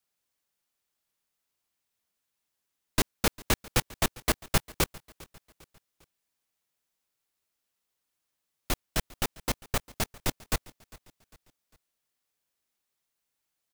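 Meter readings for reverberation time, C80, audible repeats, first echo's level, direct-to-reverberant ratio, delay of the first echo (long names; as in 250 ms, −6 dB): no reverb audible, no reverb audible, 2, −22.0 dB, no reverb audible, 401 ms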